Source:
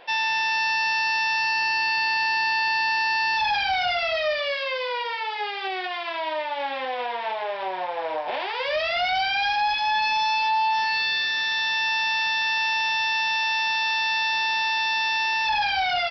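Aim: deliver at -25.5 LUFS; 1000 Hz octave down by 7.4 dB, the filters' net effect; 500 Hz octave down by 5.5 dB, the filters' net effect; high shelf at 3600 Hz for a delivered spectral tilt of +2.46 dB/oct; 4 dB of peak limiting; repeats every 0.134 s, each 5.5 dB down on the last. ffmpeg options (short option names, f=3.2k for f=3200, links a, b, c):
-af "equalizer=f=500:t=o:g=-4,equalizer=f=1k:t=o:g=-7,highshelf=f=3.6k:g=-9,alimiter=level_in=1dB:limit=-24dB:level=0:latency=1,volume=-1dB,aecho=1:1:134|268|402|536|670|804|938:0.531|0.281|0.149|0.079|0.0419|0.0222|0.0118,volume=3.5dB"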